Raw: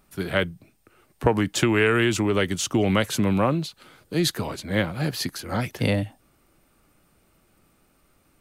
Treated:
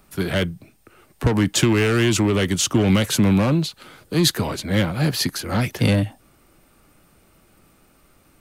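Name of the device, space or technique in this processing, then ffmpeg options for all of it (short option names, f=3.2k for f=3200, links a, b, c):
one-band saturation: -filter_complex "[0:a]acrossover=split=270|3000[a][b][c];[b]asoftclip=type=tanh:threshold=-28dB[d];[a][d][c]amix=inputs=3:normalize=0,volume=6.5dB"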